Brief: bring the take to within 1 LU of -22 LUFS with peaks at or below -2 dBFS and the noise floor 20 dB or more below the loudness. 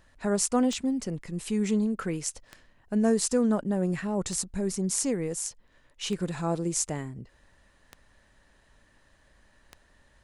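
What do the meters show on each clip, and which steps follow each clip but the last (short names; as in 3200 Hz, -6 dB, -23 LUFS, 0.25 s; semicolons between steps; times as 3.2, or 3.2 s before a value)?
clicks 6; loudness -28.5 LUFS; peak -9.5 dBFS; loudness target -22.0 LUFS
-> de-click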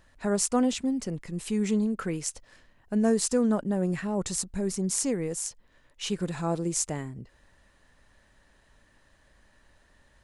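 clicks 0; loudness -28.5 LUFS; peak -9.5 dBFS; loudness target -22.0 LUFS
-> gain +6.5 dB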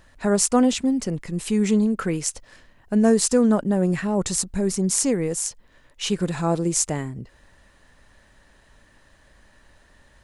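loudness -22.0 LUFS; peak -3.0 dBFS; noise floor -57 dBFS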